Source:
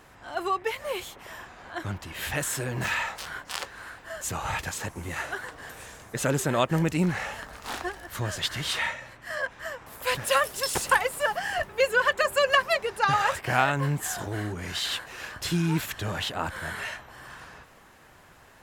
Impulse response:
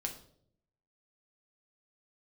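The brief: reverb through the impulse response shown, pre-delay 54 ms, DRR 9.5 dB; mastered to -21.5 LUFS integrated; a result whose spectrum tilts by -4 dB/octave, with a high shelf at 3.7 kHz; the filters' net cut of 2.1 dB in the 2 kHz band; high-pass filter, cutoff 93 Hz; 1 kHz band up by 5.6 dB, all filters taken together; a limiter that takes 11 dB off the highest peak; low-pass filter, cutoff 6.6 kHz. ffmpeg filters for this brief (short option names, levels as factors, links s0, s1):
-filter_complex "[0:a]highpass=93,lowpass=6600,equalizer=f=1000:t=o:g=8.5,equalizer=f=2000:t=o:g=-7.5,highshelf=f=3700:g=4.5,alimiter=limit=0.168:level=0:latency=1,asplit=2[s0][s1];[1:a]atrim=start_sample=2205,adelay=54[s2];[s1][s2]afir=irnorm=-1:irlink=0,volume=0.335[s3];[s0][s3]amix=inputs=2:normalize=0,volume=2.24"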